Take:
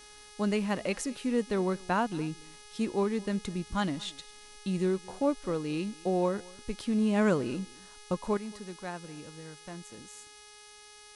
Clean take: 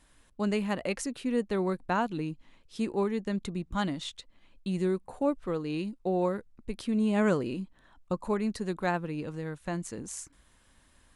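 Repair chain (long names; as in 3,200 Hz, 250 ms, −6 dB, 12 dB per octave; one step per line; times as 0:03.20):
hum removal 418.8 Hz, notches 15
noise reduction from a noise print 9 dB
echo removal 224 ms −23.5 dB
level correction +10 dB, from 0:08.37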